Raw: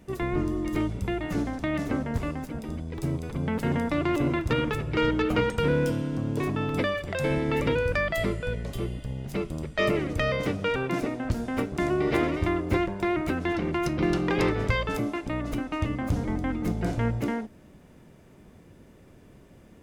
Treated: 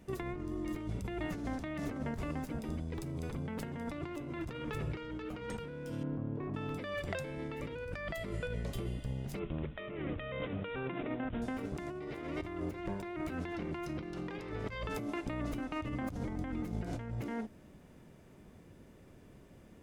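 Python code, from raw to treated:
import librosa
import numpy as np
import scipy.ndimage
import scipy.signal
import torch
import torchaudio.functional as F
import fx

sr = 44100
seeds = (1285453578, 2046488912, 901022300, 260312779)

y = fx.lowpass(x, sr, hz=1400.0, slope=12, at=(6.03, 6.54))
y = fx.resample_bad(y, sr, factor=6, down='none', up='filtered', at=(9.39, 11.42))
y = fx.over_compress(y, sr, threshold_db=-31.0, ratio=-1.0)
y = y * 10.0 ** (-8.0 / 20.0)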